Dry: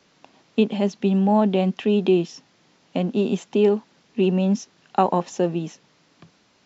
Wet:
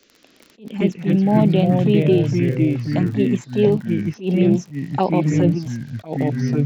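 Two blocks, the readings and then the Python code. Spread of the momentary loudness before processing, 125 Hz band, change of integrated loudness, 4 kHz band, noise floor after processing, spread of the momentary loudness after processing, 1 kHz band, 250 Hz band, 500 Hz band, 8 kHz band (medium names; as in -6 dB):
10 LU, +9.5 dB, +3.5 dB, 0.0 dB, -54 dBFS, 9 LU, -1.5 dB, +4.5 dB, +1.5 dB, no reading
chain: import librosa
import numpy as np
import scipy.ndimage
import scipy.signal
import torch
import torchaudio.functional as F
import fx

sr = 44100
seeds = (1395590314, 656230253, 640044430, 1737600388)

p1 = fx.env_phaser(x, sr, low_hz=150.0, high_hz=1500.0, full_db=-14.5)
p2 = fx.level_steps(p1, sr, step_db=13)
p3 = p1 + F.gain(torch.from_numpy(p2), -1.0).numpy()
p4 = fx.dmg_crackle(p3, sr, seeds[0], per_s=24.0, level_db=-29.0)
p5 = fx.echo_pitch(p4, sr, ms=112, semitones=-3, count=3, db_per_echo=-3.0)
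y = fx.attack_slew(p5, sr, db_per_s=210.0)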